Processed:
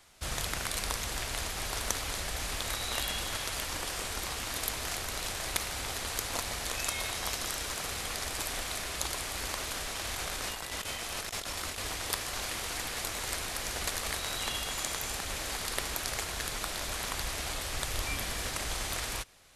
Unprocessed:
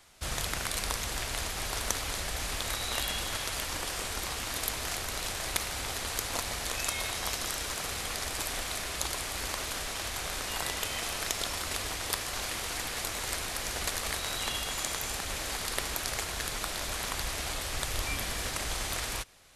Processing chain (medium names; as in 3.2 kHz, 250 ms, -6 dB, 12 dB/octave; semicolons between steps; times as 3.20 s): 10.05–11.79 s: compressor with a negative ratio -36 dBFS, ratio -0.5; trim -1 dB